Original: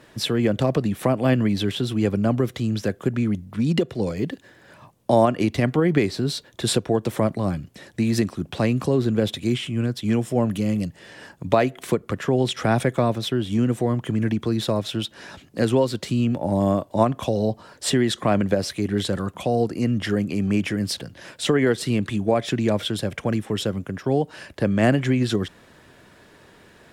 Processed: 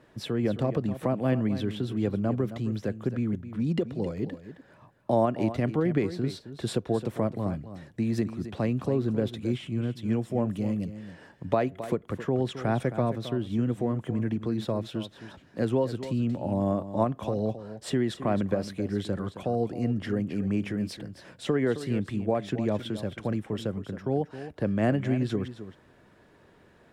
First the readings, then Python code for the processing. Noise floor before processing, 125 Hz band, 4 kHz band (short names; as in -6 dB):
-52 dBFS, -6.0 dB, -13.0 dB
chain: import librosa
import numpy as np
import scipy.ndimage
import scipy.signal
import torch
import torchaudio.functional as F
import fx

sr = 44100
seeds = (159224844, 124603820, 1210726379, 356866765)

y = fx.high_shelf(x, sr, hz=2200.0, db=-10.0)
y = y + 10.0 ** (-12.5 / 20.0) * np.pad(y, (int(267 * sr / 1000.0), 0))[:len(y)]
y = F.gain(torch.from_numpy(y), -6.0).numpy()